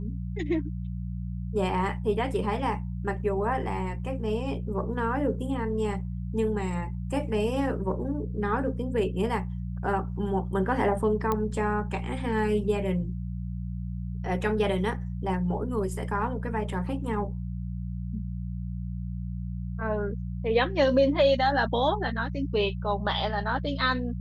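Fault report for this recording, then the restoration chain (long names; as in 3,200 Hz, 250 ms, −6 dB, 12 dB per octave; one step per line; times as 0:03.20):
mains hum 60 Hz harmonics 3 −33 dBFS
0:11.32: click −14 dBFS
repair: click removal
hum removal 60 Hz, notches 3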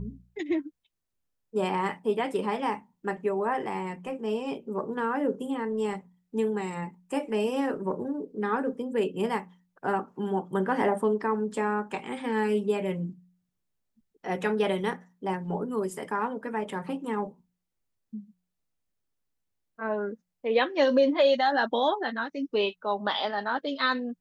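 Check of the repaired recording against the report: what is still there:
none of them is left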